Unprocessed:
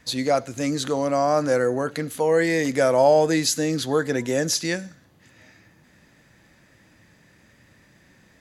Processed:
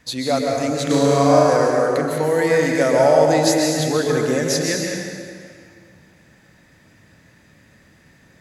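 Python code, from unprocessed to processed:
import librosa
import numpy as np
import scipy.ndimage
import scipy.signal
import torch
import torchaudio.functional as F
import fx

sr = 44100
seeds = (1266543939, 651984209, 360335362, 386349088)

y = fx.room_flutter(x, sr, wall_m=6.2, rt60_s=1.3, at=(0.89, 1.49), fade=0.02)
y = fx.rev_plate(y, sr, seeds[0], rt60_s=2.1, hf_ratio=0.75, predelay_ms=115, drr_db=-0.5)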